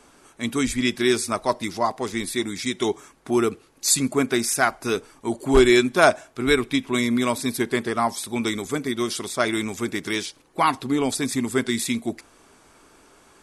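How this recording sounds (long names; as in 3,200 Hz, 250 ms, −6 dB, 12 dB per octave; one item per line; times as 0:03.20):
background noise floor −55 dBFS
spectral slope −3.5 dB per octave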